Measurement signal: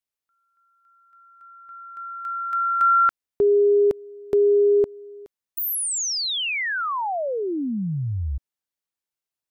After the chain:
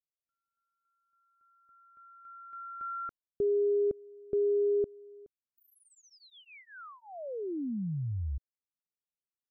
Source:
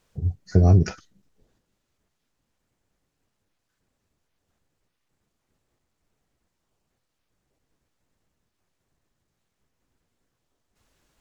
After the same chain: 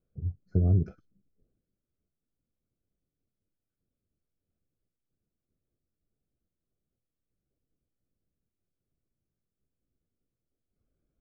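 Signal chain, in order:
moving average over 47 samples
level −7.5 dB

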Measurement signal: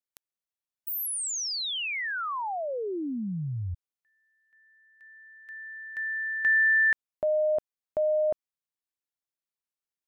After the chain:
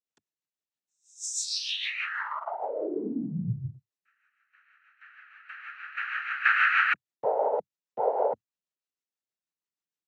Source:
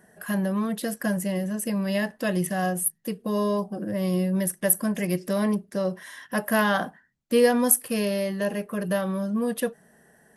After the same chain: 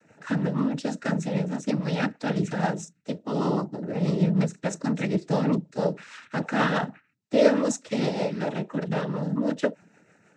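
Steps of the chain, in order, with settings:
rotating-speaker cabinet horn 6.3 Hz
cochlear-implant simulation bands 12
level +2 dB

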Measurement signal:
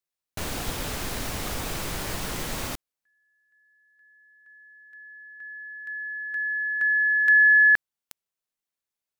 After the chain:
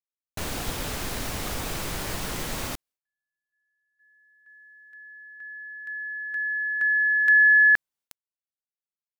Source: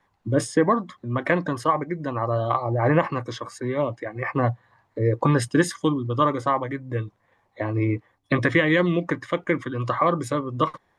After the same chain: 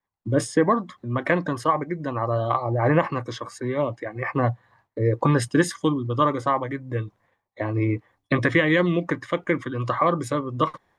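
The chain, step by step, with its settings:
downward expander −55 dBFS, range −21 dB

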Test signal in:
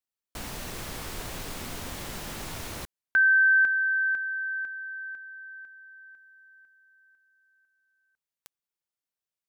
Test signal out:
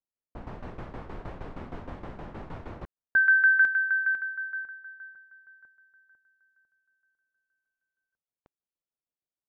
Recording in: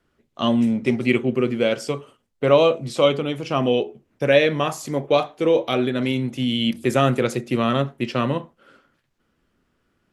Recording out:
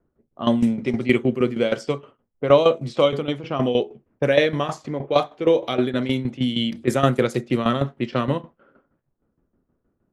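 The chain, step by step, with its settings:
dynamic equaliser 2,600 Hz, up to −7 dB, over −46 dBFS, Q 7.6
shaped tremolo saw down 6.4 Hz, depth 75%
low-pass that shuts in the quiet parts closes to 740 Hz, open at −20 dBFS
level +3 dB

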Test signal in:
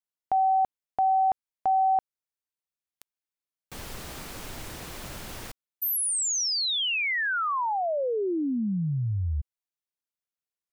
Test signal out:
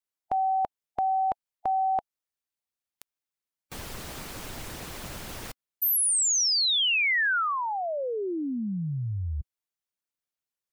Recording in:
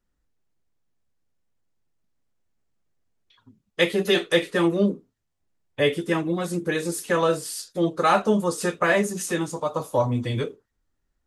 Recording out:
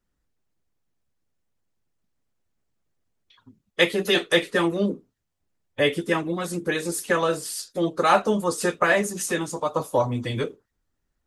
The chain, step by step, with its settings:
harmonic and percussive parts rebalanced harmonic −6 dB
level +3 dB

